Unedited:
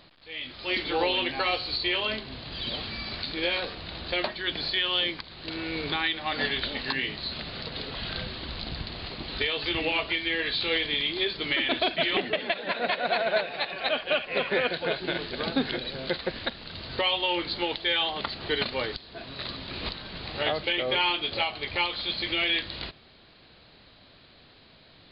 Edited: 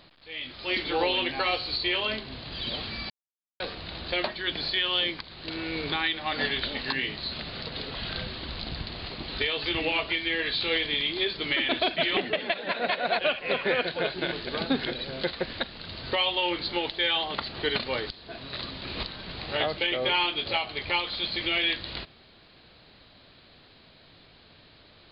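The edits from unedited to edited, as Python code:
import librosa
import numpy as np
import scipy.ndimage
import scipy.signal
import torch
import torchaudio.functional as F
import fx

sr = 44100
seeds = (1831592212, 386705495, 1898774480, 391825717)

y = fx.edit(x, sr, fx.silence(start_s=3.1, length_s=0.5),
    fx.cut(start_s=13.19, length_s=0.86), tone=tone)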